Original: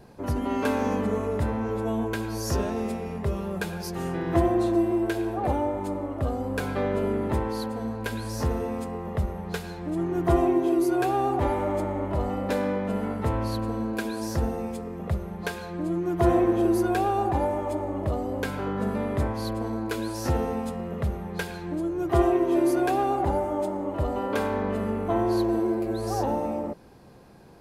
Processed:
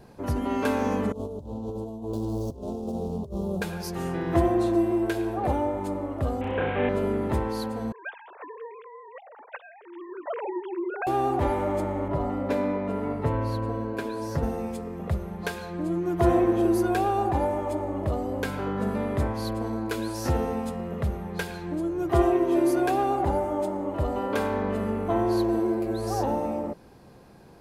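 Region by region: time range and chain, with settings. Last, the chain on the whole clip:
1.12–3.62 median filter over 25 samples + negative-ratio compressor -31 dBFS, ratio -0.5 + Butterworth band-stop 1900 Hz, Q 0.57
6.41–6.89 delta modulation 16 kbps, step -32 dBFS + flutter echo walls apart 5.6 m, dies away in 0.58 s
7.92–11.07 sine-wave speech + HPF 730 Hz
12.08–14.43 high shelf 2800 Hz -10.5 dB + comb 7.1 ms, depth 62%
whole clip: dry

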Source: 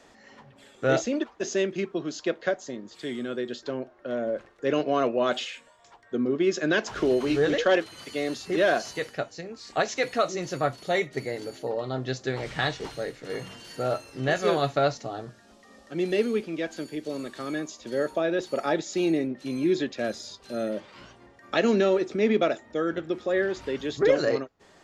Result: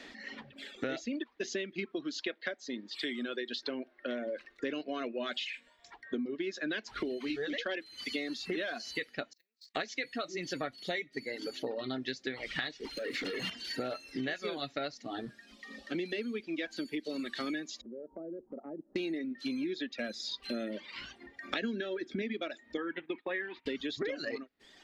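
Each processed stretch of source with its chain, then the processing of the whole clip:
2.21–4.5 low shelf 240 Hz -9.5 dB + notch 6800 Hz, Q 13
9.33–9.75 block floating point 5-bit + tilt +4.5 dB/oct + gate -31 dBFS, range -41 dB
12.97–13.5 HPF 170 Hz + compressor 12:1, threshold -39 dBFS + sample leveller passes 3
17.81–18.96 Gaussian blur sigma 11 samples + compressor 3:1, threshold -47 dBFS
21.62–22.22 low shelf 400 Hz +9 dB + small resonant body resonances 1600/3300 Hz, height 16 dB, ringing for 30 ms
22.77–23.66 gate -41 dBFS, range -20 dB + speaker cabinet 180–2900 Hz, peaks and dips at 220 Hz -9 dB, 370 Hz -4 dB, 590 Hz -9 dB, 960 Hz +10 dB, 1400 Hz -4 dB, 2400 Hz +3 dB
whole clip: reverb removal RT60 1.1 s; graphic EQ 125/250/1000/2000/4000/8000 Hz -8/+10/-4/+10/+10/-5 dB; compressor 12:1, threshold -33 dBFS

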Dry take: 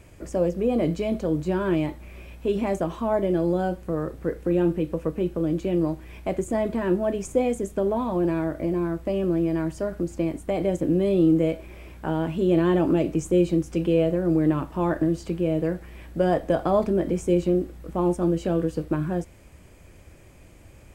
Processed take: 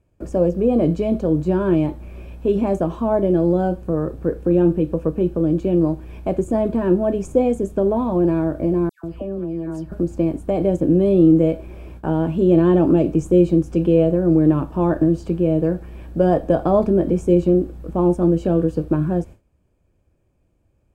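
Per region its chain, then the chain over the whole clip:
8.89–9.92 compressor 2:1, threshold -36 dBFS + dispersion lows, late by 0.148 s, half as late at 1800 Hz
whole clip: notch 2000 Hz, Q 6.7; gate with hold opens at -35 dBFS; tilt shelf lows +5.5 dB, about 1200 Hz; gain +1.5 dB

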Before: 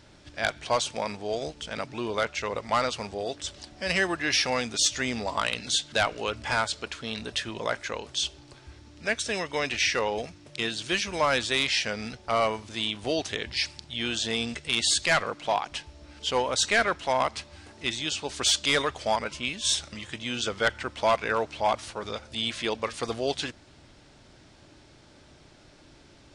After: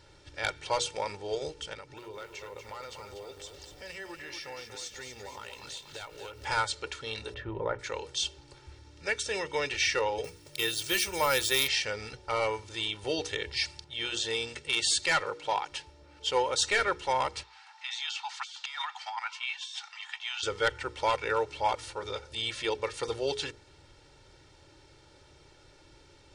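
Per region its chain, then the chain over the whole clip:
1.73–6.45 compressor 3:1, threshold -41 dBFS + lo-fi delay 0.24 s, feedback 55%, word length 9-bit, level -6.5 dB
7.34–7.79 LPF 1400 Hz + low shelf 340 Hz +7 dB
10.24–11.68 high shelf 6200 Hz +12 dB + careless resampling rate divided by 3×, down none, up hold
13.84–16.61 low shelf 86 Hz -9.5 dB + mismatched tape noise reduction decoder only
17.43–20.43 steep high-pass 720 Hz 96 dB/oct + negative-ratio compressor -32 dBFS + air absorption 110 m
whole clip: notches 60/120/180/240/300/360/420/480 Hz; comb 2.2 ms, depth 74%; gain -4.5 dB

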